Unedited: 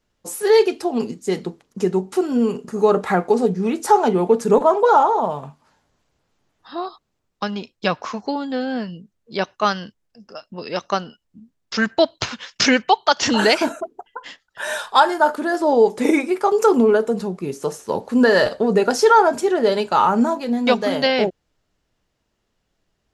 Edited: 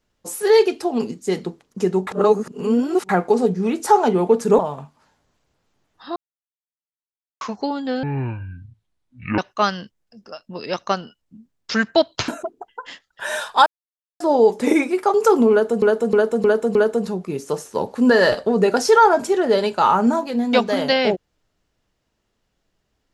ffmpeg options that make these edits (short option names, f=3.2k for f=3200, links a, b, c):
-filter_complex "[0:a]asplit=15[a][b][c][d][e][f][g][h][i][j][k][l][m][n][o];[a]atrim=end=2.072[p];[b]atrim=start=2.068:end=3.092,asetpts=PTS-STARTPTS,areverse[q];[c]atrim=start=3.088:end=4.592[r];[d]atrim=start=5.238:end=6.81,asetpts=PTS-STARTPTS,afade=t=out:st=1.568:d=0.004:c=hsin[s];[e]atrim=start=6.81:end=8.06,asetpts=PTS-STARTPTS,volume=0[t];[f]atrim=start=8.06:end=8.684,asetpts=PTS-STARTPTS,afade=t=in:d=0.004:c=hsin[u];[g]atrim=start=8.68:end=9.41,asetpts=PTS-STARTPTS,asetrate=23814,aresample=44100[v];[h]atrim=start=9.406:end=12.312[w];[i]atrim=start=13.658:end=15.04,asetpts=PTS-STARTPTS,afade=t=out:st=1.378:d=0.004:c=hsin[x];[j]atrim=start=15.04:end=15.58,asetpts=PTS-STARTPTS,volume=0[y];[k]atrim=start=15.58:end=17.202,asetpts=PTS-STARTPTS,afade=t=in:d=0.004:c=hsin[z];[l]atrim=start=16.888:end=17.202[aa];[m]atrim=start=16.888:end=17.202[ab];[n]atrim=start=16.888:end=17.202[ac];[o]atrim=start=16.888[ad];[p][q]acrossfade=d=0.004:c1=hsin:c2=hsin[ae];[ae][r]acrossfade=d=0.004:c1=hsin:c2=hsin[af];[s][t][u]concat=n=3:v=0:a=1[ag];[af][ag]acrossfade=d=0.004:c1=hsin:c2=hsin[ah];[ah][v]acrossfade=d=0.004:c1=hsin:c2=hsin[ai];[ai][w]acrossfade=d=0.004:c1=hsin:c2=hsin[aj];[x][y][z]concat=n=3:v=0:a=1[ak];[aj][ak]acrossfade=d=0.004:c1=hsin:c2=hsin[al];[al][aa]acrossfade=d=0.004:c1=hsin:c2=hsin[am];[am][ab]acrossfade=d=0.004:c1=hsin:c2=hsin[an];[an][ac]acrossfade=d=0.004:c1=hsin:c2=hsin[ao];[ao][ad]acrossfade=d=0.004:c1=hsin:c2=hsin"